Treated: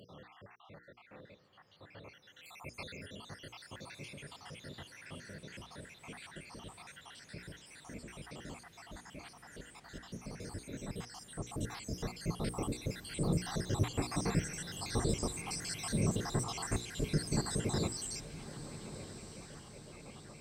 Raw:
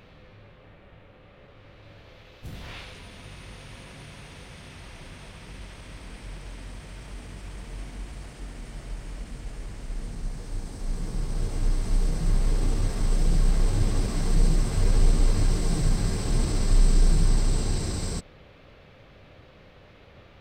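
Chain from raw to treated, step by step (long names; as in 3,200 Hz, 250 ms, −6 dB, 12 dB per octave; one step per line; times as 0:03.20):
time-frequency cells dropped at random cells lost 73%
high-pass filter 130 Hz 12 dB per octave
mains-hum notches 60/120/180/240/300/360/420/480 Hz
on a send: feedback delay with all-pass diffusion 1,282 ms, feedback 52%, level −13 dB
on the sum: level +2 dB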